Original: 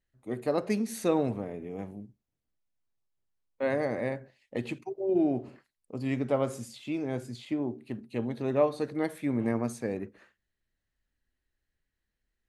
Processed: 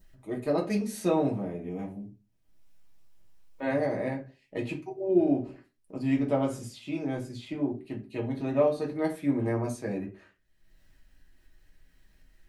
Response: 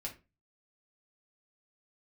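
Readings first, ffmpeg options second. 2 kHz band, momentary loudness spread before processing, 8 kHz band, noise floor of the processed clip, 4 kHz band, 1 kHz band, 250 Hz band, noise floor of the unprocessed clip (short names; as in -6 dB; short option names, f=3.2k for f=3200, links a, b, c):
0.0 dB, 13 LU, -0.5 dB, -68 dBFS, 0.0 dB, +1.0 dB, +2.0 dB, -85 dBFS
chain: -filter_complex "[0:a]adynamicequalizer=threshold=0.00251:dfrequency=2300:dqfactor=1.8:tfrequency=2300:tqfactor=1.8:attack=5:release=100:ratio=0.375:range=2:mode=cutabove:tftype=bell,acompressor=mode=upward:threshold=-49dB:ratio=2.5[a];[1:a]atrim=start_sample=2205,asetrate=48510,aresample=44100[b];[a][b]afir=irnorm=-1:irlink=0,volume=3dB"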